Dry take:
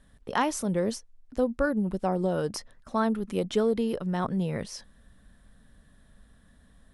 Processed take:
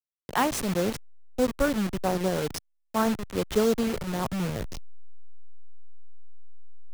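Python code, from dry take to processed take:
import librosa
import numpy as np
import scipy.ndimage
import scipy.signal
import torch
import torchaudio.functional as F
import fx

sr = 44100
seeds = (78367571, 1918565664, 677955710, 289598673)

y = fx.delta_hold(x, sr, step_db=-27.5)
y = fx.band_widen(y, sr, depth_pct=40)
y = y * librosa.db_to_amplitude(1.5)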